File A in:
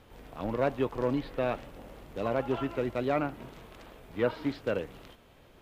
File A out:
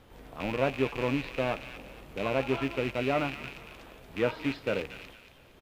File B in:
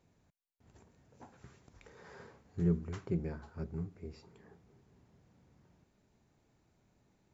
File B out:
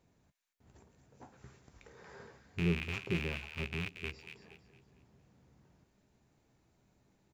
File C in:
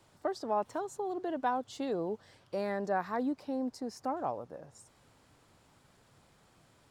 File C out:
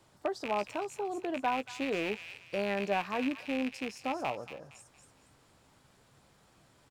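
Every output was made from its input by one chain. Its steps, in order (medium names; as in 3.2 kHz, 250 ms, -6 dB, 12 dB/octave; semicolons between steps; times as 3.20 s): rattle on loud lows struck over -42 dBFS, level -26 dBFS; doubling 15 ms -12 dB; on a send: feedback echo behind a high-pass 231 ms, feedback 35%, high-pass 1.9 kHz, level -6.5 dB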